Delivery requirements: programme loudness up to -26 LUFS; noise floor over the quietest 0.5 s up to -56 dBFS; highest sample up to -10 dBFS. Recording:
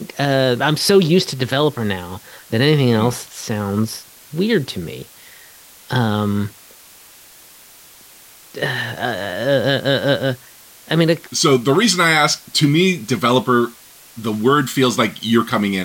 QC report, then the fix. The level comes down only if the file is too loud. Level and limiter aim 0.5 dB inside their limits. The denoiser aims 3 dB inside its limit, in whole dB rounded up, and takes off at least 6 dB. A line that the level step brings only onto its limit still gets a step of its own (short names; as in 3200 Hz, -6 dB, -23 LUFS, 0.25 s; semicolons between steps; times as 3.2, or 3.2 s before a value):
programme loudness -17.5 LUFS: fail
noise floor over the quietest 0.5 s -44 dBFS: fail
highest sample -2.5 dBFS: fail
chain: denoiser 6 dB, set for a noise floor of -44 dBFS; gain -9 dB